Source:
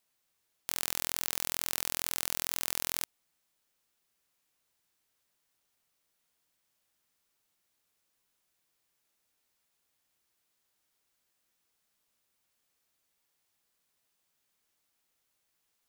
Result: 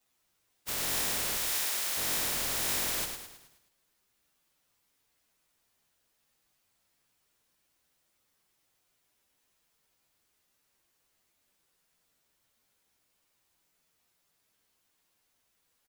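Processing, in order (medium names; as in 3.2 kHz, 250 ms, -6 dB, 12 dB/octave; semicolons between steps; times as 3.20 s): frequency axis rescaled in octaves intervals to 114%; 1.37–1.97 s: high-pass 930 Hz 6 dB/octave; frequency-shifting echo 106 ms, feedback 47%, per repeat -38 Hz, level -6 dB; trim +9 dB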